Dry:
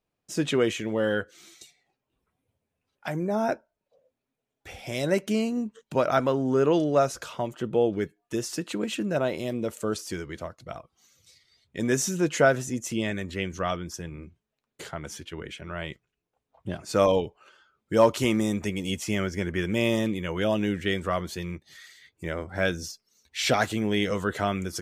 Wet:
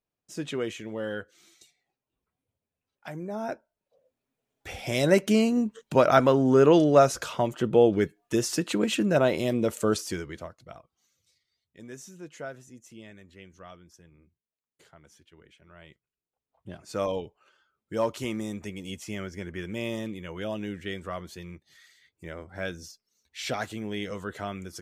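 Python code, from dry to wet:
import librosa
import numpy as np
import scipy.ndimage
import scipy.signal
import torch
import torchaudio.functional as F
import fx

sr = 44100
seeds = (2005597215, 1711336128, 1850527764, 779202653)

y = fx.gain(x, sr, db=fx.line((3.38, -7.5), (4.75, 4.0), (9.93, 4.0), (10.63, -6.5), (11.89, -18.5), (15.57, -18.5), (16.84, -8.0)))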